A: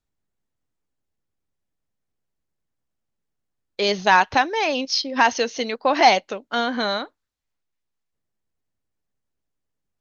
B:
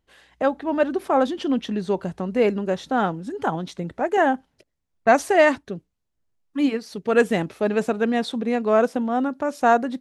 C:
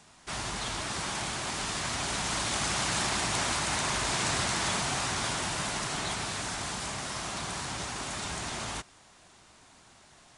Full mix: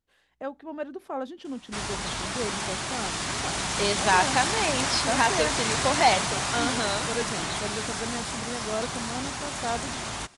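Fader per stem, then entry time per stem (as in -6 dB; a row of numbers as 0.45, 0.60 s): -6.0, -13.5, +2.5 dB; 0.00, 0.00, 1.45 s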